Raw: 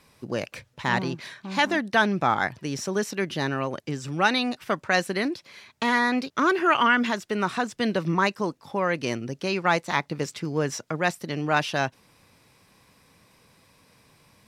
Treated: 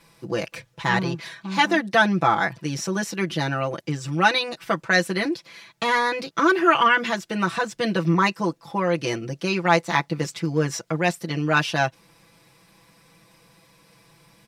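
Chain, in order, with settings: comb 6 ms, depth 96%

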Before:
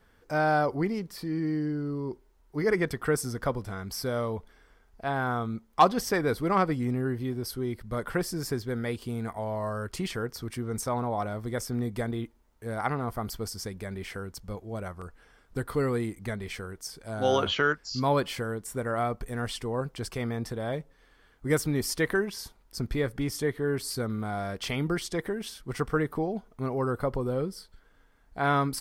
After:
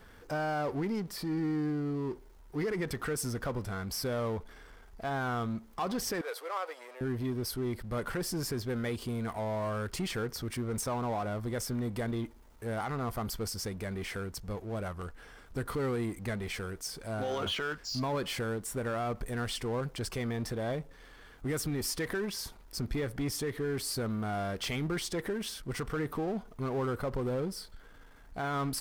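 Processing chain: power-law curve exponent 0.7; limiter -18.5 dBFS, peak gain reduction 9 dB; 6.21–7.01 elliptic high-pass 490 Hz, stop band 80 dB; gain -7.5 dB

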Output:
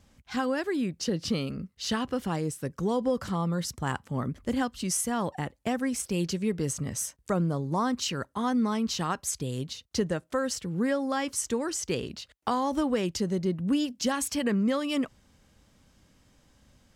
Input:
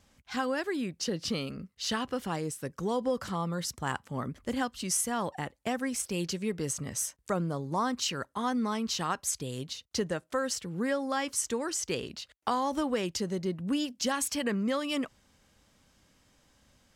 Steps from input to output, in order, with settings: low shelf 370 Hz +6.5 dB

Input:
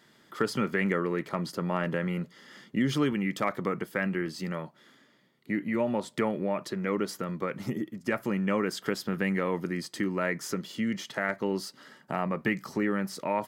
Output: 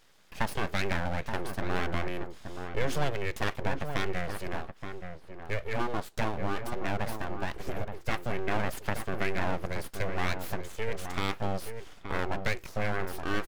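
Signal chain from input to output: full-wave rectifier; outdoor echo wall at 150 m, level -7 dB

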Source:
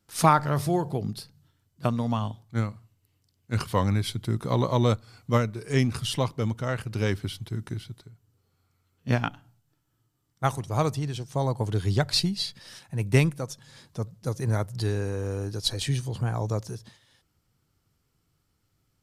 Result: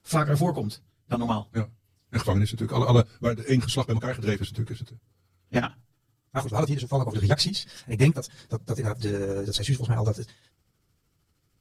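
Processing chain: rotary speaker horn 0.8 Hz, later 8 Hz, at 5.38; bell 190 Hz -2 dB 1 oct; plain phase-vocoder stretch 0.61×; gain +7.5 dB

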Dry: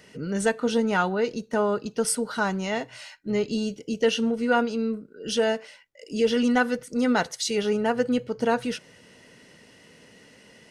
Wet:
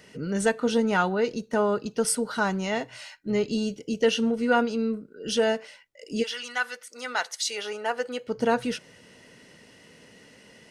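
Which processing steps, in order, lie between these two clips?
6.22–8.27 HPF 1500 Hz -> 530 Hz 12 dB/oct

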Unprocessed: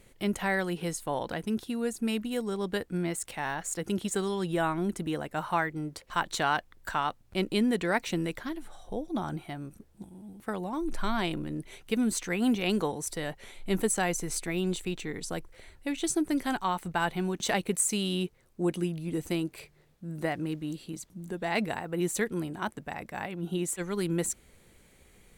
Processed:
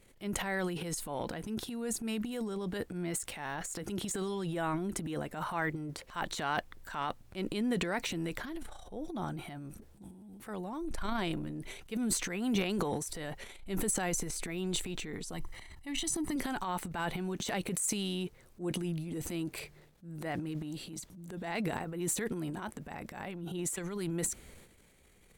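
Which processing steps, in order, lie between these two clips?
transient shaper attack -6 dB, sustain +11 dB; 15.33–16.36 comb 1 ms, depth 65%; gain -5.5 dB

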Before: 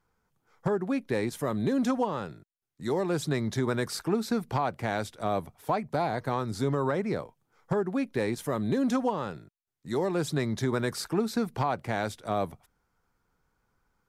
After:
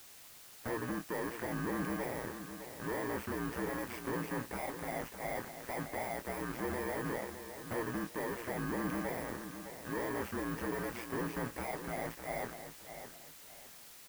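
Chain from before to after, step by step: FFT order left unsorted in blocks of 32 samples; Bessel high-pass 290 Hz, order 2; ring modulator 59 Hz; sample leveller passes 5; limiter -23.5 dBFS, peak gain reduction 9.5 dB; resonant high shelf 2800 Hz -14 dB, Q 1.5; requantised 8-bit, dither triangular; doubler 25 ms -11 dB; feedback echo 0.61 s, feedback 30%, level -10 dB; gain -7 dB

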